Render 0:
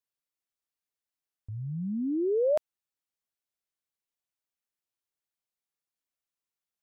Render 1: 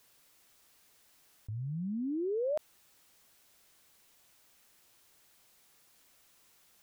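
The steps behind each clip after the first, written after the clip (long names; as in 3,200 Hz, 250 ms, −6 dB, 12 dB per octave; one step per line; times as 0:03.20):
envelope flattener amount 50%
level −8 dB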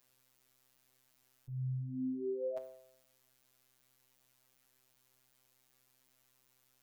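phases set to zero 129 Hz
tuned comb filter 130 Hz, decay 0.8 s, harmonics all, mix 70%
level +3.5 dB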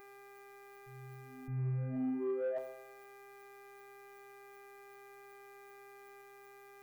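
hum with harmonics 400 Hz, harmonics 6, −61 dBFS −4 dB per octave
soft clipping −34 dBFS, distortion −19 dB
backwards echo 615 ms −16.5 dB
level +4 dB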